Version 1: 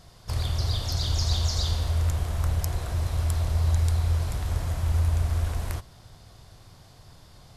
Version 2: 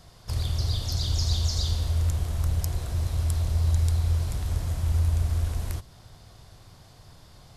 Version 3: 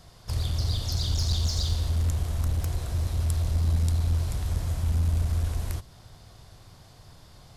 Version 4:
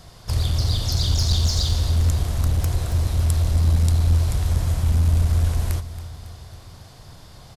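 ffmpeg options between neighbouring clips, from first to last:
-filter_complex "[0:a]acrossover=split=430|3000[s0][s1][s2];[s1]acompressor=threshold=0.00316:ratio=2[s3];[s0][s3][s2]amix=inputs=3:normalize=0"
-af "aeval=exprs='clip(val(0),-1,0.0794)':c=same"
-af "aecho=1:1:276|552|828|1104|1380:0.178|0.0978|0.0538|0.0296|0.0163,volume=2.11"

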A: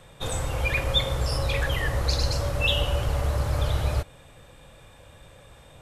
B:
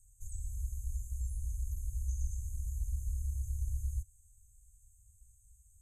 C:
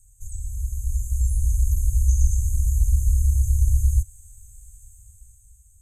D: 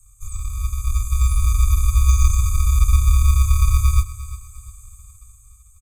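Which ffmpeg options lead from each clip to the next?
-filter_complex "[0:a]afftfilt=real='re*(1-between(b*sr/4096,110,6200))':imag='im*(1-between(b*sr/4096,110,6200))':win_size=4096:overlap=0.75,acrossover=split=3000[s0][s1];[s1]acompressor=threshold=0.00398:ratio=4:attack=1:release=60[s2];[s0][s2]amix=inputs=2:normalize=0,equalizer=f=100:t=o:w=0.67:g=-11,equalizer=f=400:t=o:w=0.67:g=3,equalizer=f=1000:t=o:w=0.67:g=9,equalizer=f=6300:t=o:w=0.67:g=5,volume=0.473"
-af "dynaudnorm=f=220:g=9:m=2.66,volume=2.66"
-filter_complex "[0:a]acrossover=split=140|930[s0][s1][s2];[s0]acrusher=samples=37:mix=1:aa=0.000001[s3];[s3][s1][s2]amix=inputs=3:normalize=0,aecho=1:1:351|702|1053:0.178|0.0605|0.0206,volume=1.58"

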